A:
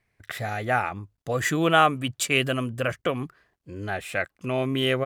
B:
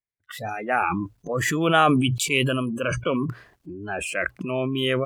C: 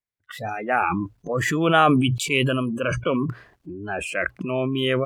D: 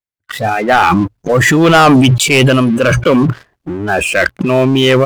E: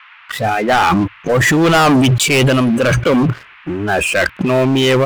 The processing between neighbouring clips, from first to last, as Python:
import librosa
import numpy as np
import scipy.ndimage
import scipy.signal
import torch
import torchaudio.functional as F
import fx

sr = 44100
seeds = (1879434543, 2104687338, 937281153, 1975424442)

y1 = fx.hum_notches(x, sr, base_hz=60, count=2)
y1 = fx.noise_reduce_blind(y1, sr, reduce_db=27)
y1 = fx.sustainer(y1, sr, db_per_s=22.0)
y2 = fx.high_shelf(y1, sr, hz=4900.0, db=-6.5)
y2 = y2 * 10.0 ** (1.5 / 20.0)
y3 = fx.leveller(y2, sr, passes=3)
y3 = y3 * 10.0 ** (3.5 / 20.0)
y4 = 10.0 ** (-7.5 / 20.0) * np.tanh(y3 / 10.0 ** (-7.5 / 20.0))
y4 = fx.dmg_noise_band(y4, sr, seeds[0], low_hz=990.0, high_hz=2800.0, level_db=-42.0)